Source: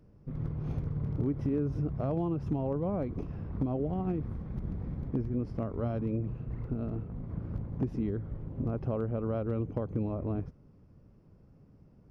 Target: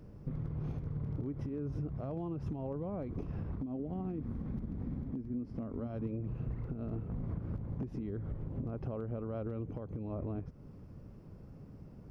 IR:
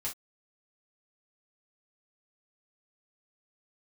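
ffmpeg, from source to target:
-filter_complex "[0:a]asplit=3[link_01][link_02][link_03];[link_01]afade=type=out:start_time=3.61:duration=0.02[link_04];[link_02]equalizer=frequency=250:width_type=o:width=0.54:gain=10,afade=type=in:start_time=3.61:duration=0.02,afade=type=out:start_time=5.86:duration=0.02[link_05];[link_03]afade=type=in:start_time=5.86:duration=0.02[link_06];[link_04][link_05][link_06]amix=inputs=3:normalize=0,acompressor=threshold=-39dB:ratio=12,alimiter=level_in=12.5dB:limit=-24dB:level=0:latency=1:release=328,volume=-12.5dB,volume=7dB"

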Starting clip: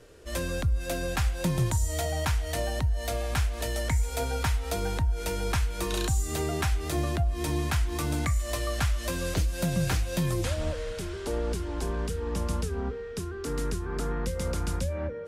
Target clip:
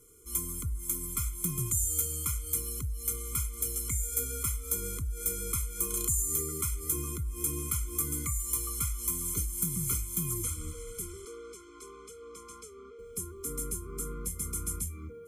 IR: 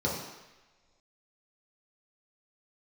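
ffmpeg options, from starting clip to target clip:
-filter_complex "[0:a]asettb=1/sr,asplit=3[link_01][link_02][link_03];[link_01]atrim=end=11.254[link_04];[link_02]atrim=start=11.25:end=12.99,asetpts=PTS-STARTPTS,afade=type=in:duration=0.004:curve=qsin,afade=type=out:start_time=1.736:duration=0.004:curve=qsin,acrossover=split=390 6000:gain=0.0708 1 0.0631[link_05][link_06][link_07];[link_05][link_06][link_07]amix=inputs=3:normalize=0[link_08];[link_03]atrim=start=12.986[link_09];[link_04][link_08]acrossfade=duration=0.004:curve1=hsin:curve2=qsin[link_10];[link_10][link_09]acrossfade=duration=0.004:curve1=qsin:curve2=hsin,aexciter=amount=13.2:drive=3.9:freq=6700,afftfilt=real='re*eq(mod(floor(b*sr/1024/500),2),0)':imag='im*eq(mod(floor(b*sr/1024/500),2),0)':win_size=1024:overlap=0.75,volume=-8.5dB"

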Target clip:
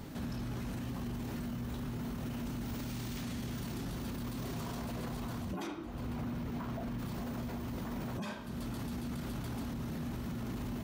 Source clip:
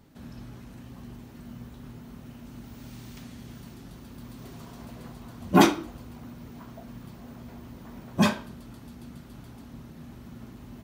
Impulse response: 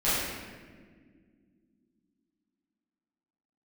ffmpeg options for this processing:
-filter_complex "[0:a]acompressor=threshold=-42dB:ratio=8,alimiter=level_in=19.5dB:limit=-24dB:level=0:latency=1:release=13,volume=-19.5dB,asettb=1/sr,asplit=3[link_01][link_02][link_03];[link_01]atrim=end=5.674[link_04];[link_02]atrim=start=5.67:end=6.99,asetpts=PTS-STARTPTS,afade=type=in:duration=0.004:curve=qsin,afade=type=out:start_time=1.316:duration=0.004:curve=qsin,bass=frequency=250:gain=1,treble=frequency=4000:gain=-6[link_05];[link_03]atrim=start=6.986[link_06];[link_04][link_05]acrossfade=duration=0.004:curve1=hsin:curve2=qsin[link_07];[link_07][link_06]acrossfade=duration=0.004:curve1=qsin:curve2=hsin,volume=11.5dB"

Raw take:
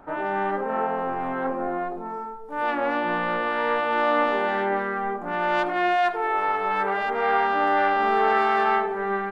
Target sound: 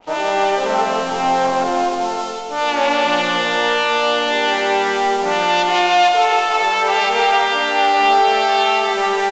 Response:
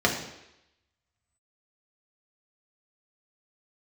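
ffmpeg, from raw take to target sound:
-filter_complex "[0:a]aeval=exprs='sgn(val(0))*max(abs(val(0))-0.00335,0)':channel_layout=same,aexciter=amount=4.5:drive=6.6:freq=2400,aresample=16000,aresample=44100,acompressor=threshold=-22dB:ratio=6,equalizer=frequency=660:width=0.74:gain=8.5,bandreject=frequency=49.9:width_type=h:width=4,bandreject=frequency=99.8:width_type=h:width=4,bandreject=frequency=149.7:width_type=h:width=4,bandreject=frequency=199.6:width_type=h:width=4,bandreject=frequency=249.5:width_type=h:width=4,bandreject=frequency=299.4:width_type=h:width=4,bandreject=frequency=349.3:width_type=h:width=4,bandreject=frequency=399.2:width_type=h:width=4,bandreject=frequency=449.1:width_type=h:width=4,bandreject=frequency=499:width_type=h:width=4,bandreject=frequency=548.9:width_type=h:width=4,bandreject=frequency=598.8:width_type=h:width=4,bandreject=frequency=648.7:width_type=h:width=4,bandreject=frequency=698.6:width_type=h:width=4,bandreject=frequency=748.5:width_type=h:width=4,bandreject=frequency=798.4:width_type=h:width=4,bandreject=frequency=848.3:width_type=h:width=4,bandreject=frequency=898.2:width_type=h:width=4,bandreject=frequency=948.1:width_type=h:width=4,bandreject=frequency=998:width_type=h:width=4,bandreject=frequency=1047.9:width_type=h:width=4,bandreject=frequency=1097.8:width_type=h:width=4,bandreject=frequency=1147.7:width_type=h:width=4,bandreject=frequency=1197.6:width_type=h:width=4,bandreject=frequency=1247.5:width_type=h:width=4,bandreject=frequency=1297.4:width_type=h:width=4,bandreject=frequency=1347.3:width_type=h:width=4,bandreject=frequency=1397.2:width_type=h:width=4,bandreject=frequency=1447.1:width_type=h:width=4,bandreject=frequency=1497:width_type=h:width=4,bandreject=frequency=1546.9:width_type=h:width=4,bandreject=frequency=1596.8:width_type=h:width=4,bandreject=frequency=1646.7:width_type=h:width=4,bandreject=frequency=1696.6:width_type=h:width=4,bandreject=frequency=1746.5:width_type=h:width=4,bandreject=frequency=1796.4:width_type=h:width=4,bandreject=frequency=1846.3:width_type=h:width=4,bandreject=frequency=1896.2:width_type=h:width=4,asplit=2[link_01][link_02];[link_02]aecho=0:1:170|323|460.7|584.6|696.2:0.631|0.398|0.251|0.158|0.1[link_03];[link_01][link_03]amix=inputs=2:normalize=0,adynamicequalizer=threshold=0.0224:dfrequency=2100:dqfactor=0.7:tfrequency=2100:tqfactor=0.7:attack=5:release=100:ratio=0.375:range=3:mode=boostabove:tftype=highshelf,volume=2.5dB"

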